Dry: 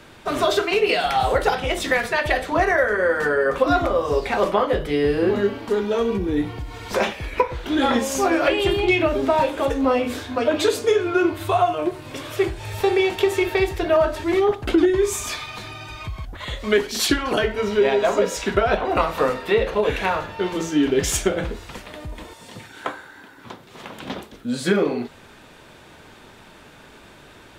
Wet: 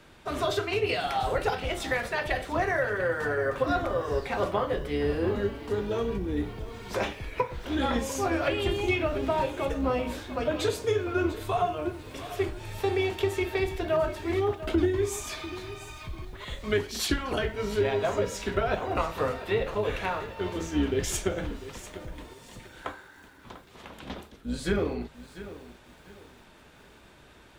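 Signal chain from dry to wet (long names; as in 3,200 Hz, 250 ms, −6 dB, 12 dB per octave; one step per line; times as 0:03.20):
sub-octave generator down 2 octaves, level −3 dB
feedback echo at a low word length 695 ms, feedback 35%, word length 7 bits, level −14.5 dB
level −8.5 dB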